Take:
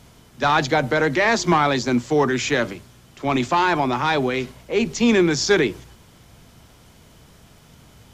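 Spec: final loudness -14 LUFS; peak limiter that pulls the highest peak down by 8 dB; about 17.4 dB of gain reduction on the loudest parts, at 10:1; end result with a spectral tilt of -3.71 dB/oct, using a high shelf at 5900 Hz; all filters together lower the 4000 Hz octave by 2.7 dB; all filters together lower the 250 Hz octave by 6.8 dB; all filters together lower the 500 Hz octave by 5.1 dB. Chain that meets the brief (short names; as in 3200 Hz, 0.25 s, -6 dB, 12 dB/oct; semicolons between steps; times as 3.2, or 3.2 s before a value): bell 250 Hz -7.5 dB; bell 500 Hz -4 dB; bell 4000 Hz -4.5 dB; high shelf 5900 Hz +3 dB; compressor 10:1, threshold -34 dBFS; gain +25.5 dB; limiter -3.5 dBFS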